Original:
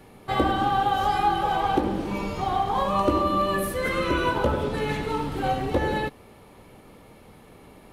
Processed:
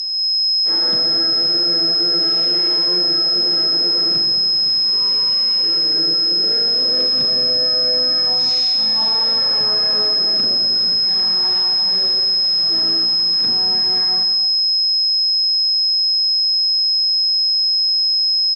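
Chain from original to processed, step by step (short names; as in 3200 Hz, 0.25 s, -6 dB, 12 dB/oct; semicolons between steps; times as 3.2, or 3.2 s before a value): weighting filter A; harmoniser -12 st -8 dB, +4 st -9 dB; whine 12000 Hz -28 dBFS; RIAA curve recording; Schroeder reverb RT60 0.57 s, combs from 31 ms, DRR 6 dB; speed mistake 78 rpm record played at 33 rpm; gain -7.5 dB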